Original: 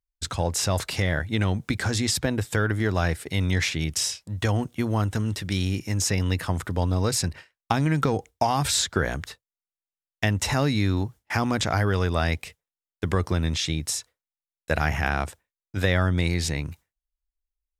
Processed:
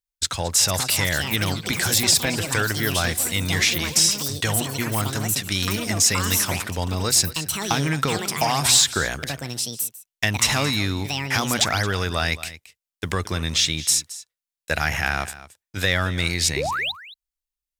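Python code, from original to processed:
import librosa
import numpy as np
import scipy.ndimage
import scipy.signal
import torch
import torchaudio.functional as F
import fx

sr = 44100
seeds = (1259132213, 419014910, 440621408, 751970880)

y = fx.tilt_shelf(x, sr, db=-6.5, hz=1500.0)
y = fx.spec_paint(y, sr, seeds[0], shape='rise', start_s=16.56, length_s=0.36, low_hz=340.0, high_hz=4200.0, level_db=-29.0)
y = fx.leveller(y, sr, passes=1)
y = y + 10.0 ** (-16.5 / 20.0) * np.pad(y, (int(222 * sr / 1000.0), 0))[:len(y)]
y = fx.echo_pitch(y, sr, ms=533, semitones=7, count=3, db_per_echo=-6.0)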